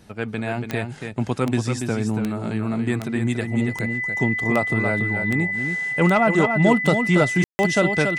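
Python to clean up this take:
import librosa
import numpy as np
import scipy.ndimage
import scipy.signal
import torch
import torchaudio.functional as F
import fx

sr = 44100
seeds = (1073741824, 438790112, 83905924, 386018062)

y = fx.fix_declick_ar(x, sr, threshold=10.0)
y = fx.notch(y, sr, hz=2000.0, q=30.0)
y = fx.fix_ambience(y, sr, seeds[0], print_start_s=0.89, print_end_s=1.39, start_s=7.44, end_s=7.59)
y = fx.fix_echo_inverse(y, sr, delay_ms=283, level_db=-6.5)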